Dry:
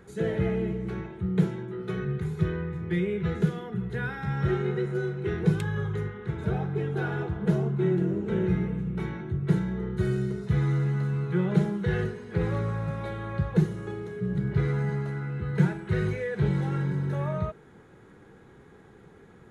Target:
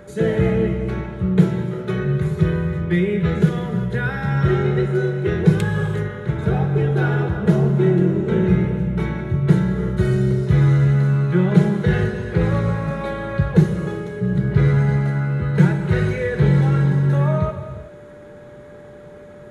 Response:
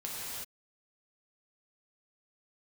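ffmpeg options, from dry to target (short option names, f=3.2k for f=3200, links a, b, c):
-filter_complex "[0:a]aeval=exprs='val(0)+0.00251*sin(2*PI*590*n/s)':c=same,asplit=2[a][b];[1:a]atrim=start_sample=2205[c];[b][c]afir=irnorm=-1:irlink=0,volume=-8.5dB[d];[a][d]amix=inputs=2:normalize=0,volume=6.5dB"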